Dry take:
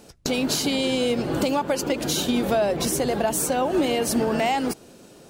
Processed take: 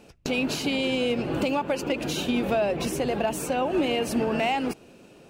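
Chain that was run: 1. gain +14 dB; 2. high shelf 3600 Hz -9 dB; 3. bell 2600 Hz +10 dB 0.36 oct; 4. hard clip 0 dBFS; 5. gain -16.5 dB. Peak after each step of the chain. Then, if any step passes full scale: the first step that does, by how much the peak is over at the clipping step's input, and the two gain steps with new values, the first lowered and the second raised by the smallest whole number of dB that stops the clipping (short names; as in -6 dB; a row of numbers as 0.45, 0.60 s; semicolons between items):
+5.0, +1.5, +3.0, 0.0, -16.5 dBFS; step 1, 3.0 dB; step 1 +11 dB, step 5 -13.5 dB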